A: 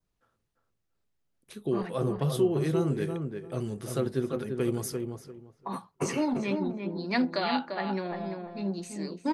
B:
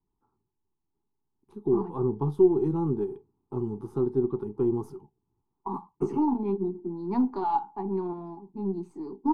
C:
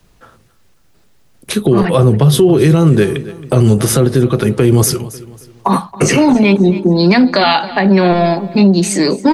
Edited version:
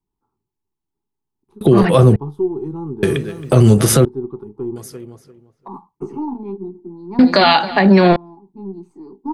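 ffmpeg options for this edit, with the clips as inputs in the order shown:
-filter_complex "[2:a]asplit=3[a][b][c];[1:a]asplit=5[d][e][f][g][h];[d]atrim=end=1.612[i];[a]atrim=start=1.608:end=2.162[j];[e]atrim=start=2.158:end=3.032[k];[b]atrim=start=3.028:end=4.052[l];[f]atrim=start=4.048:end=4.762[m];[0:a]atrim=start=4.758:end=5.682[n];[g]atrim=start=5.678:end=7.192[o];[c]atrim=start=7.188:end=8.162[p];[h]atrim=start=8.158[q];[i][j]acrossfade=d=0.004:c1=hsin:c2=hsin[r];[r][k]acrossfade=d=0.004:c1=hsin:c2=hsin[s];[s][l]acrossfade=d=0.004:c1=hsin:c2=hsin[t];[t][m]acrossfade=d=0.004:c1=hsin:c2=hsin[u];[u][n]acrossfade=d=0.004:c1=hsin:c2=hsin[v];[v][o]acrossfade=d=0.004:c1=hsin:c2=hsin[w];[w][p]acrossfade=d=0.004:c1=hsin:c2=hsin[x];[x][q]acrossfade=d=0.004:c1=hsin:c2=hsin"

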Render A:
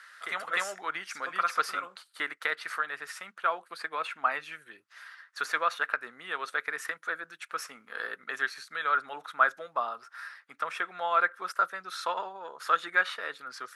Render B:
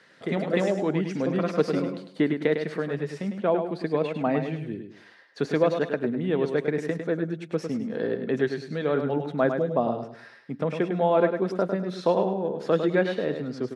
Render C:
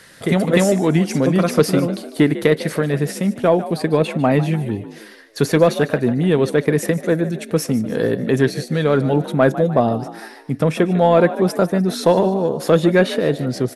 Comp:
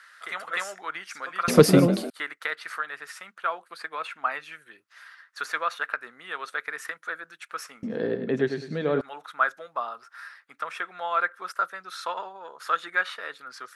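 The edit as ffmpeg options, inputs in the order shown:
-filter_complex "[0:a]asplit=3[a][b][c];[a]atrim=end=1.482[d];[2:a]atrim=start=1.478:end=2.102[e];[b]atrim=start=2.098:end=7.832[f];[1:a]atrim=start=7.828:end=9.012[g];[c]atrim=start=9.008[h];[d][e]acrossfade=d=0.004:c1=hsin:c2=hsin[i];[i][f]acrossfade=d=0.004:c1=hsin:c2=hsin[j];[j][g]acrossfade=d=0.004:c1=hsin:c2=hsin[k];[k][h]acrossfade=d=0.004:c1=hsin:c2=hsin"

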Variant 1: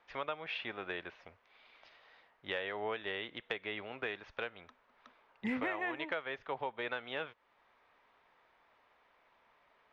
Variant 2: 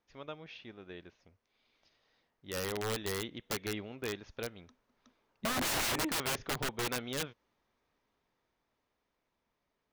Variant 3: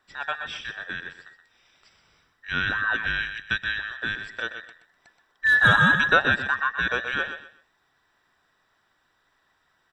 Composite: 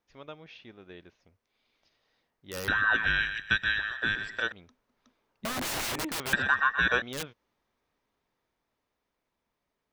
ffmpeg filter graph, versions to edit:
-filter_complex "[2:a]asplit=2[a][b];[1:a]asplit=3[c][d][e];[c]atrim=end=2.682[f];[a]atrim=start=2.678:end=4.522[g];[d]atrim=start=4.518:end=6.332[h];[b]atrim=start=6.328:end=7.022[i];[e]atrim=start=7.018[j];[f][g]acrossfade=d=0.004:c1=hsin:c2=hsin[k];[k][h]acrossfade=d=0.004:c1=hsin:c2=hsin[l];[l][i]acrossfade=d=0.004:c1=hsin:c2=hsin[m];[m][j]acrossfade=d=0.004:c1=hsin:c2=hsin"

